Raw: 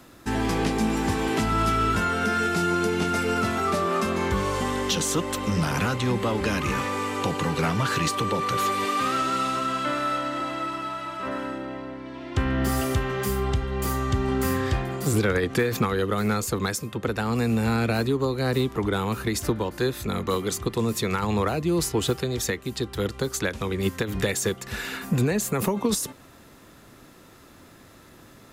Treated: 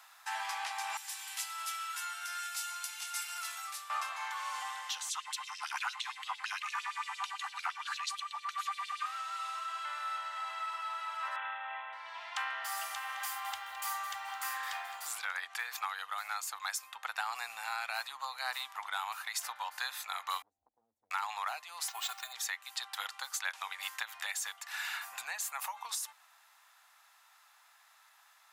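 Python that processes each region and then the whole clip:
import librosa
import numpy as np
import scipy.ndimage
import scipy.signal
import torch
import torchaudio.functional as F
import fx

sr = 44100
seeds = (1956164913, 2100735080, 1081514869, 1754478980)

y = fx.chain(x, sr, fx.differentiator(),
    fx.band_widen(depth_pct=70), at=(0.97, 3.9))
y = fx.chain(y, sr, fx.lowpass(hz=12000.0, slope=24),
    fx.filter_lfo_highpass(shape='sine', hz=8.8, low_hz=850.0, high_hz=4200.0, q=2.5),
    fx.band_widen(depth_pct=40), at=(5.09, 9.06))
y = fx.chain(y, sr, fx.highpass(hz=230.0, slope=12),
    fx.comb(ms=2.6, depth=0.38),
    fx.resample_bad(factor=6, down='none', up='filtered'), at=(11.36, 11.93))
y = fx.chain(y, sr, fx.peak_eq(hz=91.0, db=3.5, octaves=0.77),
    fx.echo_crushed(ms=214, feedback_pct=35, bits=8, wet_db=-12.5), at=(12.74, 15.15))
y = fx.chain(y, sr, fx.cheby2_lowpass(hz=1100.0, order=4, stop_db=60),
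    fx.peak_eq(hz=120.0, db=-13.5, octaves=0.3),
    fx.band_squash(depth_pct=100), at=(20.42, 21.11))
y = fx.chain(y, sr, fx.highpass(hz=220.0, slope=24),
    fx.sample_hold(seeds[0], rate_hz=11000.0, jitter_pct=0),
    fx.comb(ms=2.8, depth=0.72), at=(21.88, 22.33))
y = scipy.signal.sosfilt(scipy.signal.ellip(4, 1.0, 50, 790.0, 'highpass', fs=sr, output='sos'), y)
y = fx.rider(y, sr, range_db=10, speed_s=0.5)
y = y * 10.0 ** (-8.0 / 20.0)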